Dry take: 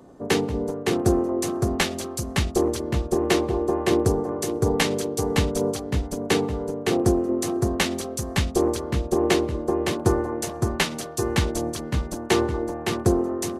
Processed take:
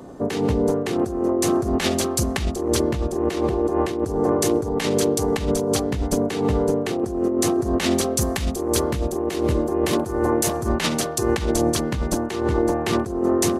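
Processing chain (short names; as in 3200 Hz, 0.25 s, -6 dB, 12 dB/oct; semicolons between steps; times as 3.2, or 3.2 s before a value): 8.21–10.67 high shelf 9800 Hz +11 dB; negative-ratio compressor -27 dBFS, ratio -1; gain +5.5 dB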